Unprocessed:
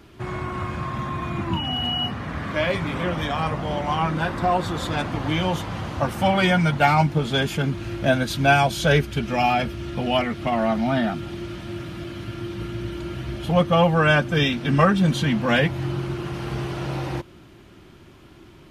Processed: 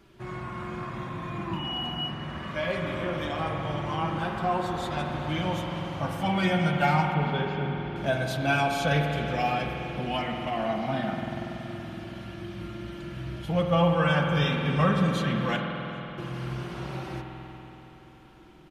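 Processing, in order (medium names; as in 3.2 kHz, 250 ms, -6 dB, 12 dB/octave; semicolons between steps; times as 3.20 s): 15.56–16.18 s: amplifier tone stack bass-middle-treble 10-0-1; flange 0.41 Hz, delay 5.2 ms, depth 1.1 ms, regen -32%; 7.14–7.96 s: distance through air 290 m; feedback delay 393 ms, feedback 43%, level -22 dB; spring tank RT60 3.9 s, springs 47 ms, chirp 65 ms, DRR 1.5 dB; trim -4.5 dB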